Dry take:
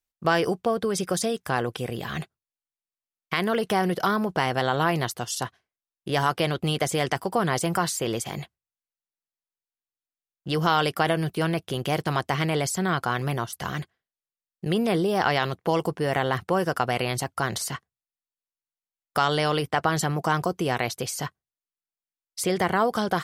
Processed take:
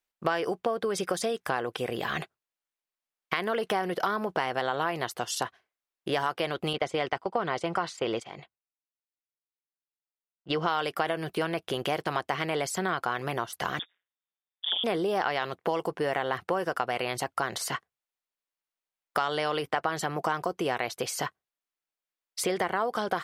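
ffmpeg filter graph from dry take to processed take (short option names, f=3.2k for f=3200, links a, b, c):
-filter_complex "[0:a]asettb=1/sr,asplit=3[a][b][c];[a]atrim=end=6.734[d];[b]atrim=start=6.73:end=10.68,asetpts=PTS-STARTPTS,afade=t=in:d=0.004:c=qsin,afade=t=out:st=3.946:d=0.004:c=qsin,agate=range=-12dB:threshold=-31dB:ratio=16:release=100:detection=peak,lowpass=4.7k,bandreject=f=1.7k:w=13[e];[c]atrim=start=10.676[f];[d][e]acrossfade=d=0.004:c1=hsin:c2=qsin[g];[g][f]acrossfade=d=0.004:c1=qsin:c2=hsin,asettb=1/sr,asplit=3[h][i][j];[h]atrim=end=13.794[k];[i]atrim=start=13.79:end=14.84,asetpts=PTS-STARTPTS,afade=t=in:d=0.004:c=qsin,afade=t=out:st=1.046:d=0.004:c=qsin,lowpass=f=3.1k:t=q:w=0.5098,lowpass=f=3.1k:t=q:w=0.6013,lowpass=f=3.1k:t=q:w=0.9,lowpass=f=3.1k:t=q:w=2.563,afreqshift=-3600,tremolo=f=180:d=0.974[l];[j]atrim=start=14.836[m];[k][l]acrossfade=d=0.004:c1=hsin:c2=qsin[n];[n][m]acrossfade=d=0.004:c1=qsin:c2=hsin,bass=f=250:g=-12,treble=f=4k:g=-7,acompressor=threshold=-32dB:ratio=3,volume=5dB"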